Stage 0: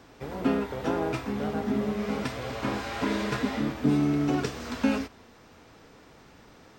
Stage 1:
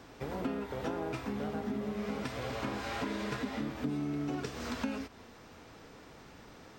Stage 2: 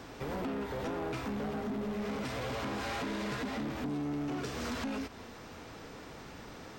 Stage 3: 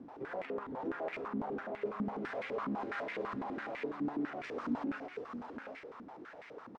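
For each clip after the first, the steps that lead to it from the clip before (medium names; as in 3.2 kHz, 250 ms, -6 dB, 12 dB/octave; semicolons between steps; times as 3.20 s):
compression 4:1, threshold -34 dBFS, peak gain reduction 13 dB
in parallel at -1 dB: peak limiter -30 dBFS, peak gain reduction 7.5 dB; on the sum: saturation -32 dBFS, distortion -11 dB
delay 729 ms -5 dB; step-sequenced band-pass 12 Hz 250–2100 Hz; trim +6 dB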